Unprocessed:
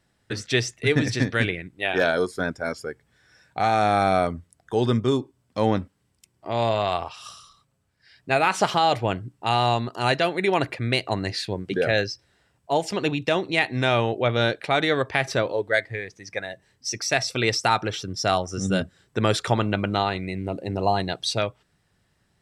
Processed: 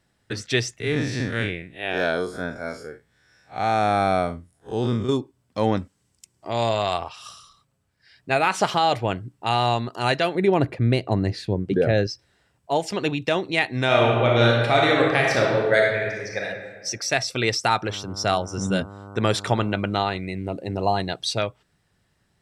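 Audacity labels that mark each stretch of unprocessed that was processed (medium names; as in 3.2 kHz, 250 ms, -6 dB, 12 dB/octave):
0.800000	5.090000	spectral blur width 103 ms
5.770000	6.990000	peaking EQ 6.9 kHz +9 dB 1.1 oct
10.350000	12.070000	tilt shelf lows +7.5 dB, about 730 Hz
13.850000	16.440000	reverb throw, RT60 1.5 s, DRR -2 dB
17.860000	19.770000	mains buzz 100 Hz, harmonics 15, -40 dBFS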